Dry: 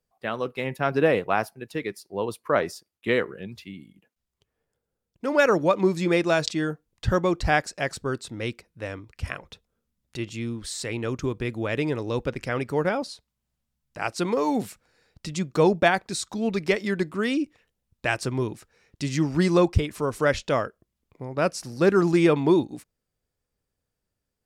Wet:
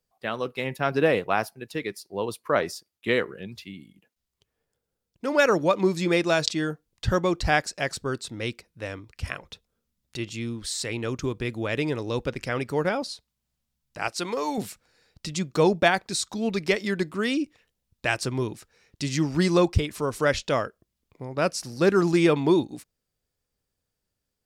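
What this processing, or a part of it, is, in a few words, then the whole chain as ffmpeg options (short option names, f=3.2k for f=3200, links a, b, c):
presence and air boost: -filter_complex "[0:a]equalizer=f=4.4k:t=o:w=1.5:g=4,highshelf=f=9.6k:g=4.5,asettb=1/sr,asplit=3[a][b][c];[a]atrim=end=14.084[d];[b]atrim=start=14.08:end=14.58,asetpts=PTS-STARTPTS,afade=t=in:d=0.004:c=qsin,afade=t=out:st=0.496:d=0.004:c=qsin,lowshelf=f=420:g=-8.5[e];[c]atrim=start=14.576[f];[d][e]acrossfade=d=0.004:c1=hsin:c2=qsin[g];[g][f]acrossfade=d=0.004:c1=qsin:c2=hsin,volume=-1dB"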